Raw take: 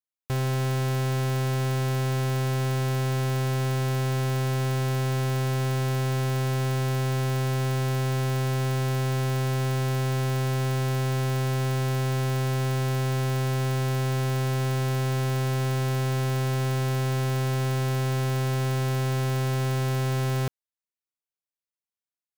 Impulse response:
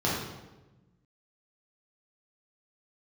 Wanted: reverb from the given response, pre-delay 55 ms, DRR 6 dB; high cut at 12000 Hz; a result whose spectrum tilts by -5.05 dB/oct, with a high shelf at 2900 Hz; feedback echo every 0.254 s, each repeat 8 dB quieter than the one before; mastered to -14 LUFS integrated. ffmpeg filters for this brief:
-filter_complex "[0:a]lowpass=12k,highshelf=f=2.9k:g=4.5,aecho=1:1:254|508|762|1016|1270:0.398|0.159|0.0637|0.0255|0.0102,asplit=2[a][b];[1:a]atrim=start_sample=2205,adelay=55[c];[b][c]afir=irnorm=-1:irlink=0,volume=-18dB[d];[a][d]amix=inputs=2:normalize=0,volume=13dB"

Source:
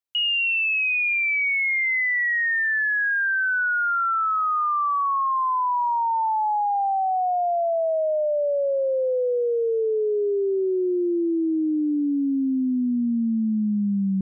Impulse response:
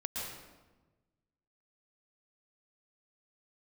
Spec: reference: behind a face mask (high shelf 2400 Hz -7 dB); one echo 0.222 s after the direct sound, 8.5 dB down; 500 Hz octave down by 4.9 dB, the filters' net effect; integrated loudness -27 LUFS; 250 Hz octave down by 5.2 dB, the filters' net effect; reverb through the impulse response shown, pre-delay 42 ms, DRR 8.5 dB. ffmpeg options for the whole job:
-filter_complex "[0:a]equalizer=f=250:t=o:g=-5,equalizer=f=500:t=o:g=-4.5,aecho=1:1:222:0.376,asplit=2[a][b];[1:a]atrim=start_sample=2205,adelay=42[c];[b][c]afir=irnorm=-1:irlink=0,volume=-11dB[d];[a][d]amix=inputs=2:normalize=0,highshelf=f=2.4k:g=-7,volume=-2.5dB"

